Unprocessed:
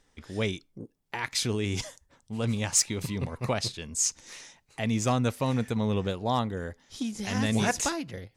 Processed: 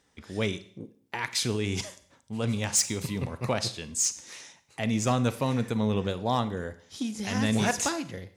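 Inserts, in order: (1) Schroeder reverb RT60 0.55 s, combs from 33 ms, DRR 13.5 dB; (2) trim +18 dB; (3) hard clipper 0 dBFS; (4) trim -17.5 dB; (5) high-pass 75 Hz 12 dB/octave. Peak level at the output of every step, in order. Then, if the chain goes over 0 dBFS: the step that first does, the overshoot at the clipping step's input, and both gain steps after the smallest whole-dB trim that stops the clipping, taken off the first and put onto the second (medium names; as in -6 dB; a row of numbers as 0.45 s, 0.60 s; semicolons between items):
-12.5 dBFS, +5.5 dBFS, 0.0 dBFS, -17.5 dBFS, -13.0 dBFS; step 2, 5.5 dB; step 2 +12 dB, step 4 -11.5 dB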